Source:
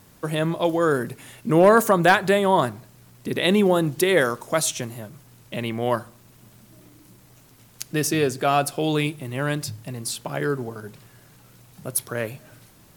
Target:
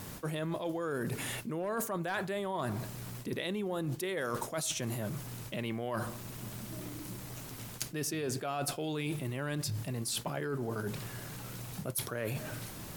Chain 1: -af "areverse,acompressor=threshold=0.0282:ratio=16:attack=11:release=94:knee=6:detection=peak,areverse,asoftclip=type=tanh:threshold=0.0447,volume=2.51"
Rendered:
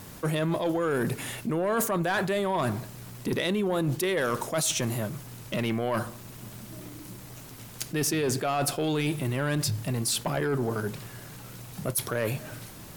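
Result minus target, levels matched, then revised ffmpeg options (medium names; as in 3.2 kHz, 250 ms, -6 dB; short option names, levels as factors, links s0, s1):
compression: peak gain reduction -10 dB
-af "areverse,acompressor=threshold=0.00841:ratio=16:attack=11:release=94:knee=6:detection=peak,areverse,asoftclip=type=tanh:threshold=0.0447,volume=2.51"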